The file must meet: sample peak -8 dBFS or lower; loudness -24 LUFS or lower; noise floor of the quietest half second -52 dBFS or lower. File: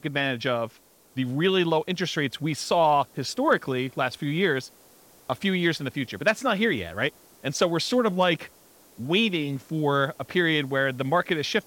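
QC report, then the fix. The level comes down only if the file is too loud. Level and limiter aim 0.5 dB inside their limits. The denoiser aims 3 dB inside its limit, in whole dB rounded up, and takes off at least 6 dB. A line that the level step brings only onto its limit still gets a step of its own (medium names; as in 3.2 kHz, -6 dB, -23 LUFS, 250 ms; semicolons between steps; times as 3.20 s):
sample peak -9.5 dBFS: pass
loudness -25.0 LUFS: pass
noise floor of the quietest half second -55 dBFS: pass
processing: none needed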